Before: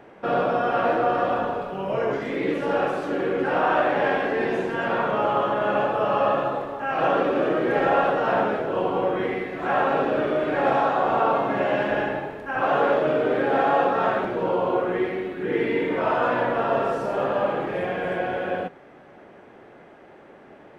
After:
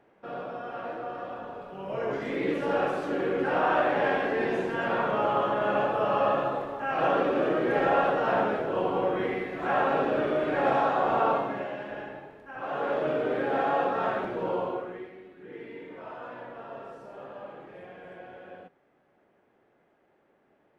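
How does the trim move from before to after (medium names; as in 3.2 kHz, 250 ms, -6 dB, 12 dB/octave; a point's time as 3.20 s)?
1.40 s -14.5 dB
2.28 s -3.5 dB
11.32 s -3.5 dB
11.76 s -14 dB
12.58 s -14 dB
13.04 s -6 dB
14.59 s -6 dB
15.11 s -19 dB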